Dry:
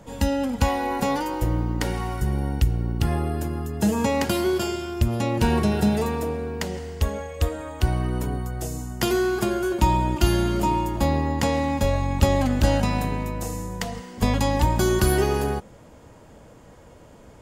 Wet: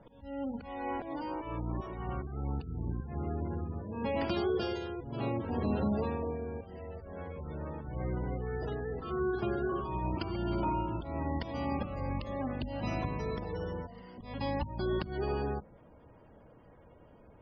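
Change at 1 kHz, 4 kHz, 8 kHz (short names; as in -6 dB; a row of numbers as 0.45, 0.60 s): -11.5 dB, -15.5 dB, under -35 dB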